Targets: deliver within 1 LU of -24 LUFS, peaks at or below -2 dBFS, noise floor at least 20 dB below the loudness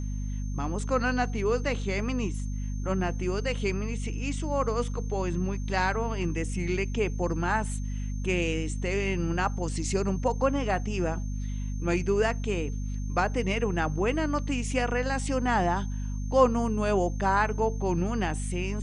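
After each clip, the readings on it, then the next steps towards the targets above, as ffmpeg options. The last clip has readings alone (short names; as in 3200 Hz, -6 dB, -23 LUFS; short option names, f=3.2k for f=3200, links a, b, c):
hum 50 Hz; harmonics up to 250 Hz; hum level -29 dBFS; steady tone 6300 Hz; tone level -51 dBFS; loudness -28.5 LUFS; peak -8.5 dBFS; loudness target -24.0 LUFS
-> -af "bandreject=f=50:t=h:w=6,bandreject=f=100:t=h:w=6,bandreject=f=150:t=h:w=6,bandreject=f=200:t=h:w=6,bandreject=f=250:t=h:w=6"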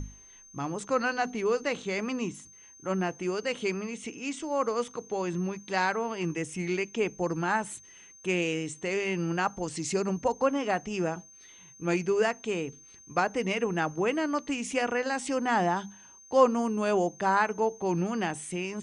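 hum none; steady tone 6300 Hz; tone level -51 dBFS
-> -af "bandreject=f=6.3k:w=30"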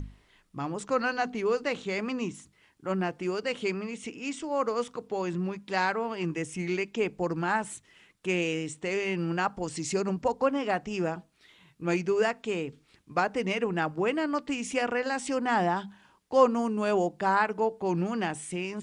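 steady tone none; loudness -29.5 LUFS; peak -8.5 dBFS; loudness target -24.0 LUFS
-> -af "volume=5.5dB"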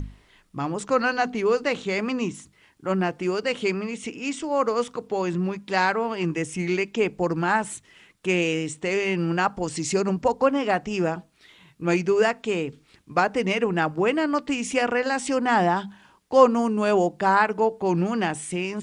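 loudness -24.0 LUFS; peak -3.0 dBFS; noise floor -59 dBFS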